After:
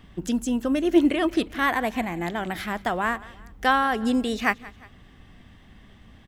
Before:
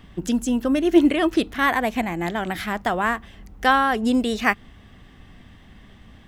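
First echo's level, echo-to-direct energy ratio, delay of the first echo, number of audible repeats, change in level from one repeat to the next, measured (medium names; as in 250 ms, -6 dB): -20.5 dB, -19.5 dB, 178 ms, 2, -6.5 dB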